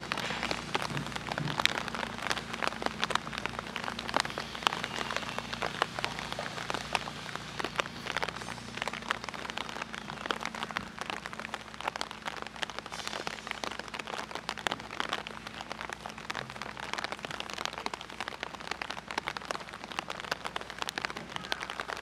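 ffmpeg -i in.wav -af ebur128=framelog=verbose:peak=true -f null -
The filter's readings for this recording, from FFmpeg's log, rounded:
Integrated loudness:
  I:         -35.5 LUFS
  Threshold: -45.5 LUFS
Loudness range:
  LRA:         4.7 LU
  Threshold: -55.7 LUFS
  LRA low:   -37.7 LUFS
  LRA high:  -33.0 LUFS
True peak:
  Peak:       -4.1 dBFS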